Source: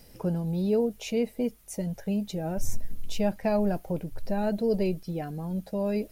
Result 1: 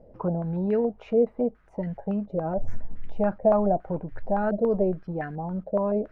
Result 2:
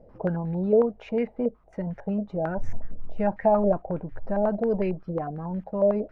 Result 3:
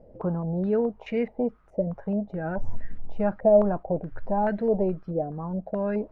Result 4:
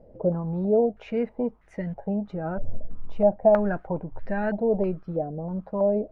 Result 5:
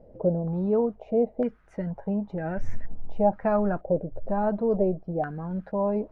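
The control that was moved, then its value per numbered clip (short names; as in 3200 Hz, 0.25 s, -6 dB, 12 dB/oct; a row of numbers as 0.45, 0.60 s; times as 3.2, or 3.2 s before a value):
stepped low-pass, rate: 7.1, 11, 4.7, 3.1, 2.1 Hz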